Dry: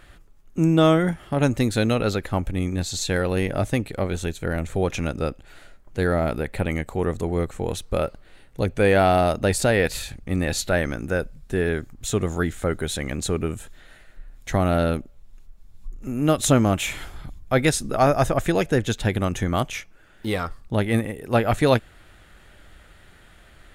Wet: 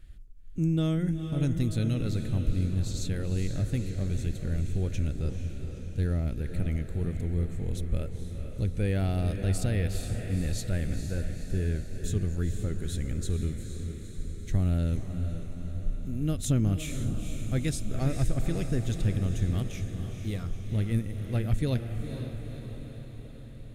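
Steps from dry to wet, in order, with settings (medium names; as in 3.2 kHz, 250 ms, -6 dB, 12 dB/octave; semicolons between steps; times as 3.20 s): amplifier tone stack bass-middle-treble 10-0-1; on a send: echo that smears into a reverb 474 ms, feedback 62%, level -7.5 dB; on the sum: trim +9 dB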